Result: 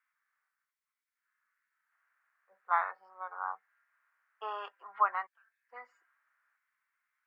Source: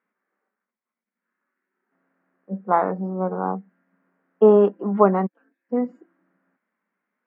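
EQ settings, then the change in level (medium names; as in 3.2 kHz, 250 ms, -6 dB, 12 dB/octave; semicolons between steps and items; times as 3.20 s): high-pass 1.2 kHz 24 dB/octave; 0.0 dB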